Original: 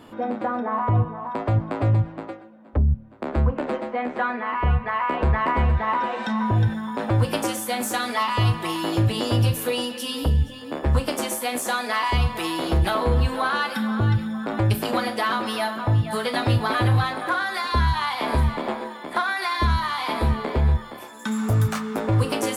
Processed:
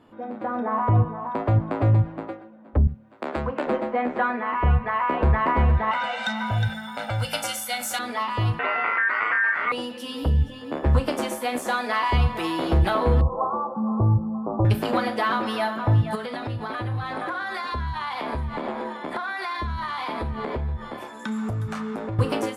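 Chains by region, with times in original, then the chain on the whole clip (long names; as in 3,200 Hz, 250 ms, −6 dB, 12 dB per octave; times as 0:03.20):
0:02.87–0:03.67: high-pass filter 450 Hz 6 dB per octave + high-shelf EQ 2,800 Hz +9.5 dB
0:05.91–0:07.99: tilt shelving filter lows −10 dB, about 1,400 Hz + comb filter 1.4 ms, depth 83%
0:08.59–0:09.72: ring modulation 1,700 Hz + loudspeaker in its box 220–2,600 Hz, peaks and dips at 440 Hz +4 dB, 1,000 Hz +5 dB, 1,700 Hz +5 dB + envelope flattener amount 70%
0:13.21–0:14.65: Butterworth low-pass 1,200 Hz 96 dB per octave + notch filter 260 Hz, Q 5.7
0:16.15–0:22.19: low-pass filter 12,000 Hz 24 dB per octave + downward compressor 8 to 1, threshold −28 dBFS
whole clip: automatic gain control gain up to 12 dB; high-shelf EQ 4,100 Hz −11 dB; level −8.5 dB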